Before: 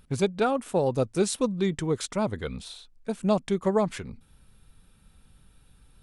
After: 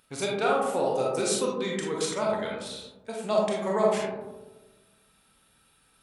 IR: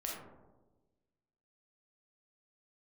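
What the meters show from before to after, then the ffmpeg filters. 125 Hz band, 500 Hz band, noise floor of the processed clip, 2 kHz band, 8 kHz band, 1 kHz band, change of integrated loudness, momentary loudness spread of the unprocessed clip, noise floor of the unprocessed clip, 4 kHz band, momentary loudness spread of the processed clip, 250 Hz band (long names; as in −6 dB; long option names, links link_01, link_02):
−8.5 dB, +0.5 dB, −65 dBFS, +3.0 dB, +3.0 dB, +2.5 dB, −0.5 dB, 14 LU, −60 dBFS, +3.0 dB, 13 LU, −5.0 dB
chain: -filter_complex "[0:a]highpass=frequency=830:poles=1[link_01];[1:a]atrim=start_sample=2205[link_02];[link_01][link_02]afir=irnorm=-1:irlink=0,volume=4dB"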